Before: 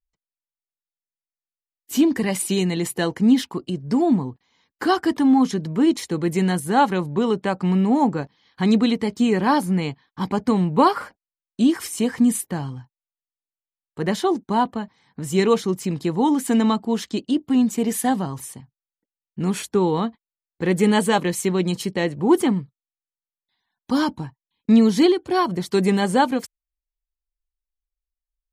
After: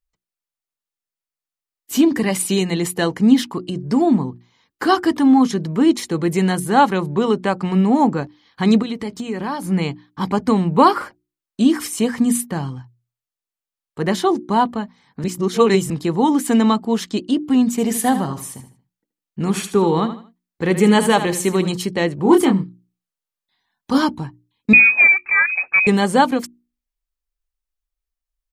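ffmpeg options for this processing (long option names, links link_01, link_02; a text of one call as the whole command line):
ffmpeg -i in.wav -filter_complex "[0:a]asettb=1/sr,asplit=3[link_01][link_02][link_03];[link_01]atrim=end=8.824[link_04];[link_02]atrim=start=8.82:end=9.65,asetpts=PTS-STARTPTS,afade=type=in:duration=0.004:curve=qsin,afade=type=out:start_time=0.826:duration=0.004:curve=qsin,acompressor=threshold=-26dB:ratio=4:attack=3.2:release=140:knee=1:detection=peak[link_05];[link_03]atrim=start=9.646[link_06];[link_04][link_05]acrossfade=duration=0.004:curve1=hsin:curve2=qsin[link_07];[link_07][link_06]acrossfade=duration=0.004:curve1=qsin:curve2=hsin,asplit=3[link_08][link_09][link_10];[link_08]afade=type=out:start_time=17.77:duration=0.02[link_11];[link_09]aecho=1:1:77|154|231:0.282|0.0874|0.0271,afade=type=in:start_time=17.77:duration=0.02,afade=type=out:start_time=21.72:duration=0.02[link_12];[link_10]afade=type=in:start_time=21.72:duration=0.02[link_13];[link_11][link_12][link_13]amix=inputs=3:normalize=0,asettb=1/sr,asplit=3[link_14][link_15][link_16];[link_14]atrim=end=22.224[link_17];[link_15]atrim=start=22.22:end=23.98,asetpts=PTS-STARTPTS,afade=type=in:duration=0.004:curve=qsin,afade=type=out:start_time=1.756:duration=0.004:curve=qsin,asplit=2[link_18][link_19];[link_19]adelay=26,volume=-4.5dB[link_20];[link_18][link_20]amix=inputs=2:normalize=0,atrim=end_sample=77616[link_21];[link_16]atrim=start=23.976[link_22];[link_17][link_21]acrossfade=duration=0.004:curve1=hsin:curve2=qsin[link_23];[link_23][link_22]acrossfade=duration=0.004:curve1=qsin:curve2=hsin,asettb=1/sr,asplit=3[link_24][link_25][link_26];[link_24]atrim=end=24.734[link_27];[link_25]atrim=start=24.73:end=25.87,asetpts=PTS-STARTPTS,afade=type=in:duration=0.004:curve=qsin,afade=type=out:start_time=1.136:duration=0.004:curve=qsin,lowpass=frequency=2300:width_type=q:width=0.5098,lowpass=frequency=2300:width_type=q:width=0.6013,lowpass=frequency=2300:width_type=q:width=0.9,lowpass=frequency=2300:width_type=q:width=2.563,afreqshift=-2700[link_28];[link_26]atrim=start=25.866[link_29];[link_27][link_28]acrossfade=duration=0.004:curve1=hsin:curve2=qsin[link_30];[link_30][link_29]acrossfade=duration=0.004:curve1=qsin:curve2=hsin,asplit=3[link_31][link_32][link_33];[link_31]atrim=end=15.242[link_34];[link_32]atrim=start=15.238:end=15.902,asetpts=PTS-STARTPTS,areverse[link_35];[link_33]atrim=start=15.898[link_36];[link_34][link_35]acrossfade=duration=0.004:curve1=hsin:curve2=hsin[link_37];[link_37][link_36]acrossfade=duration=0.004:curve1=hsin:curve2=hsin,equalizer=frequency=1200:width_type=o:width=0.28:gain=2.5,bandreject=frequency=60:width_type=h:width=6,bandreject=frequency=120:width_type=h:width=6,bandreject=frequency=180:width_type=h:width=6,bandreject=frequency=240:width_type=h:width=6,bandreject=frequency=300:width_type=h:width=6,bandreject=frequency=360:width_type=h:width=6,volume=3.5dB" out.wav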